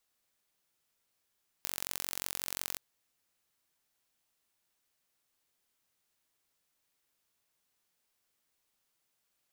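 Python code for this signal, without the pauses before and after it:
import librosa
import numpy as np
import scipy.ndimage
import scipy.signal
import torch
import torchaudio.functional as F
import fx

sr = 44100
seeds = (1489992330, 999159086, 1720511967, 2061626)

y = fx.impulse_train(sr, length_s=1.12, per_s=45.6, accent_every=2, level_db=-7.0)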